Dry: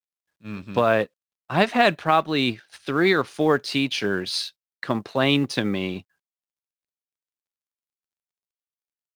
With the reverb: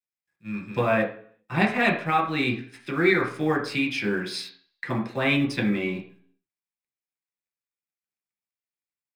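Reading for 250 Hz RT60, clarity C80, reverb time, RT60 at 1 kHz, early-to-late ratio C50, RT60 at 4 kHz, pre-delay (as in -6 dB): 0.60 s, 13.5 dB, 0.55 s, 0.50 s, 9.0 dB, 0.50 s, 3 ms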